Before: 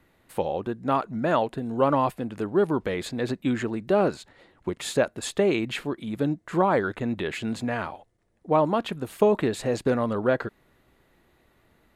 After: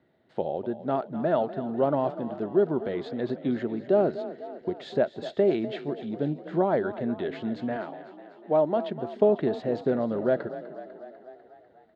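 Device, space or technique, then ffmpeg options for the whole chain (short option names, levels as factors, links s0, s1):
frequency-shifting delay pedal into a guitar cabinet: -filter_complex "[0:a]asplit=8[s0][s1][s2][s3][s4][s5][s6][s7];[s1]adelay=248,afreqshift=34,volume=0.2[s8];[s2]adelay=496,afreqshift=68,volume=0.127[s9];[s3]adelay=744,afreqshift=102,volume=0.0813[s10];[s4]adelay=992,afreqshift=136,volume=0.0525[s11];[s5]adelay=1240,afreqshift=170,volume=0.0335[s12];[s6]adelay=1488,afreqshift=204,volume=0.0214[s13];[s7]adelay=1736,afreqshift=238,volume=0.0136[s14];[s0][s8][s9][s10][s11][s12][s13][s14]amix=inputs=8:normalize=0,highpass=100,equalizer=f=150:t=q:w=4:g=5,equalizer=f=230:t=q:w=4:g=5,equalizer=f=380:t=q:w=4:g=7,equalizer=f=650:t=q:w=4:g=9,equalizer=f=1100:t=q:w=4:g=-7,equalizer=f=2500:t=q:w=4:g=-9,lowpass=f=4200:w=0.5412,lowpass=f=4200:w=1.3066,asettb=1/sr,asplit=3[s15][s16][s17];[s15]atrim=end=7.764[s18];[s16]atrim=start=7.76:end=8.91,asetpts=PTS-STARTPTS,afade=t=in:d=0.004:c=qsin,afade=t=out:st=1.146:d=0.004:c=qsin,highpass=200[s19];[s17]atrim=start=8.906[s20];[s18][s19]acrossfade=d=0.004:c1=hsin:c2=qsin[s21];[s21][s20]acrossfade=d=0.004:c1=qsin:c2=hsin,volume=0.473"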